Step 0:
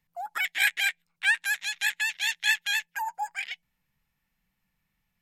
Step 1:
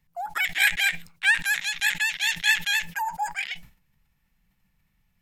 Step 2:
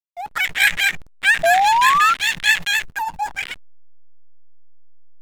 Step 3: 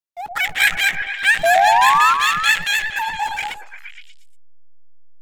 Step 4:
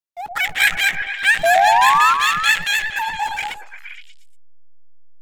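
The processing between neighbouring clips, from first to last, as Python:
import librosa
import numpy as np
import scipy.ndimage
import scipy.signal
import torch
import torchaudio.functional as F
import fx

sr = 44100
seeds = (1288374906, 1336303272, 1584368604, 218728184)

y1 = fx.low_shelf(x, sr, hz=160.0, db=9.0)
y1 = fx.sustainer(y1, sr, db_per_s=140.0)
y1 = F.gain(torch.from_numpy(y1), 3.0).numpy()
y2 = fx.peak_eq(y1, sr, hz=340.0, db=-5.5, octaves=0.33)
y2 = fx.spec_paint(y2, sr, seeds[0], shape='rise', start_s=1.43, length_s=0.71, low_hz=650.0, high_hz=1400.0, level_db=-20.0)
y2 = fx.backlash(y2, sr, play_db=-28.5)
y2 = F.gain(torch.from_numpy(y2), 5.5).numpy()
y3 = fx.echo_stepped(y2, sr, ms=117, hz=550.0, octaves=0.7, feedback_pct=70, wet_db=-2.0)
y4 = fx.buffer_glitch(y3, sr, at_s=(3.86,), block=2048, repeats=1)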